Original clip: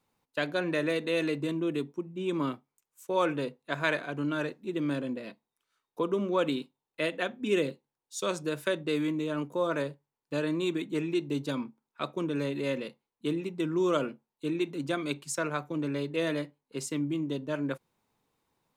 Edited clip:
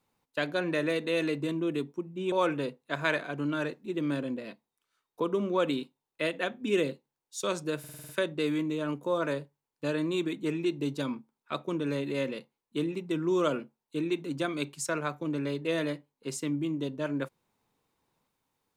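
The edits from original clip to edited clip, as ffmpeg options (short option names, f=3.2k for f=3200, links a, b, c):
-filter_complex "[0:a]asplit=8[a][b][c][d][e][f][g][h];[a]atrim=end=2.322[i];[b]atrim=start=3.108:end=8.632[j];[c]atrim=start=8.578:end=8.632[k];[d]atrim=start=8.578:end=8.632[l];[e]atrim=start=8.578:end=8.632[m];[f]atrim=start=8.578:end=8.632[n];[g]atrim=start=8.578:end=8.632[o];[h]atrim=start=8.578[p];[i][j]acrossfade=d=0.004:c1=hsin:c2=hsin[q];[q][k]acrossfade=d=0.004:c1=hsin:c2=hsin[r];[r][l]acrossfade=d=0.004:c1=hsin:c2=hsin[s];[s][m]acrossfade=d=0.004:c1=hsin:c2=hsin[t];[t][n]acrossfade=d=0.004:c1=hsin:c2=hsin[u];[u][o]acrossfade=d=0.004:c1=hsin:c2=hsin[v];[v][p]acrossfade=d=0.004:c1=hsin:c2=hsin"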